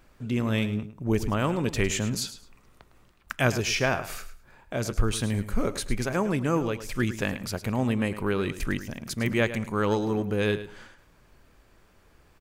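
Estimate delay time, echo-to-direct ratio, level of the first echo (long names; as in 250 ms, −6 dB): 106 ms, −13.0 dB, −13.0 dB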